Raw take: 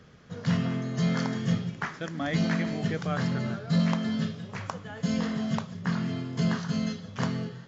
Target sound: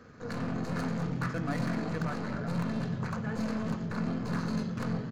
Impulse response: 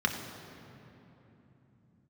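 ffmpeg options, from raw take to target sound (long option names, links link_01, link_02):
-filter_complex "[0:a]aeval=exprs='(tanh(70.8*val(0)+0.65)-tanh(0.65))/70.8':channel_layout=same,atempo=1.5,asplit=2[link_01][link_02];[1:a]atrim=start_sample=2205,highshelf=frequency=5500:gain=-8[link_03];[link_02][link_03]afir=irnorm=-1:irlink=0,volume=-10dB[link_04];[link_01][link_04]amix=inputs=2:normalize=0,volume=3dB"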